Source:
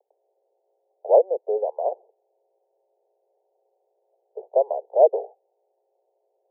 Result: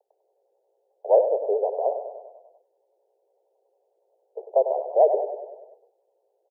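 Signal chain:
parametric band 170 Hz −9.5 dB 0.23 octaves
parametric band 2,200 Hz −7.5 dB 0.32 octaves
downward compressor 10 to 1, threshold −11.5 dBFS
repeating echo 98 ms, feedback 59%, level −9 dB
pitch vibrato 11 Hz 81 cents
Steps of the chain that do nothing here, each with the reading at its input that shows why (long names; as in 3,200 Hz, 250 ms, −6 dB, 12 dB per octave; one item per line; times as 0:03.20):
parametric band 170 Hz: nothing at its input below 360 Hz
parametric band 2,200 Hz: nothing at its input above 960 Hz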